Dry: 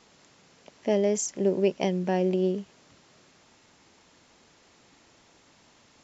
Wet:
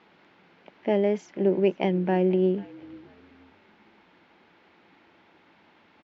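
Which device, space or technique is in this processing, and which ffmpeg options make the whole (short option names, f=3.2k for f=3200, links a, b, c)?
frequency-shifting delay pedal into a guitar cabinet: -filter_complex "[0:a]asplit=4[a][b][c][d];[b]adelay=487,afreqshift=-52,volume=-22dB[e];[c]adelay=974,afreqshift=-104,volume=-30.9dB[f];[d]adelay=1461,afreqshift=-156,volume=-39.7dB[g];[a][e][f][g]amix=inputs=4:normalize=0,highpass=83,equalizer=f=130:t=q:w=4:g=-9,equalizer=f=180:t=q:w=4:g=5,equalizer=f=340:t=q:w=4:g=6,equalizer=f=850:t=q:w=4:g=5,equalizer=f=1.5k:t=q:w=4:g=5,equalizer=f=2.2k:t=q:w=4:g=4,lowpass=f=3.5k:w=0.5412,lowpass=f=3.5k:w=1.3066,volume=-1dB"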